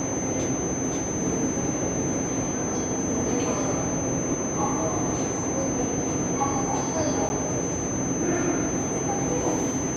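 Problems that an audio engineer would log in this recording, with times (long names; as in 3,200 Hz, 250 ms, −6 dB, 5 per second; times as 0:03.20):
whistle 6,200 Hz −31 dBFS
0:07.29–0:07.30: drop-out 10 ms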